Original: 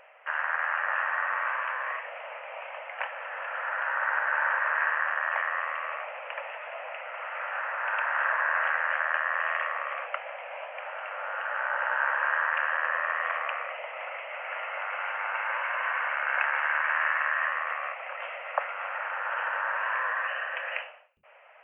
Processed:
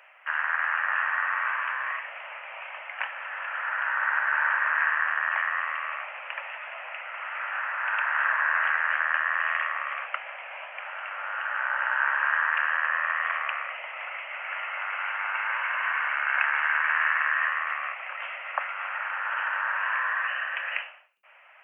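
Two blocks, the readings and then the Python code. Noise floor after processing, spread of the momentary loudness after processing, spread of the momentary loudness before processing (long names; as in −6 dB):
−42 dBFS, 12 LU, 11 LU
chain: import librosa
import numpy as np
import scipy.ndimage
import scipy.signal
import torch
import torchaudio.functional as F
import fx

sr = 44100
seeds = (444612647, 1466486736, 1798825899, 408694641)

y = scipy.signal.sosfilt(scipy.signal.butter(2, 1100.0, 'highpass', fs=sr, output='sos'), x)
y = F.gain(torch.from_numpy(y), 3.5).numpy()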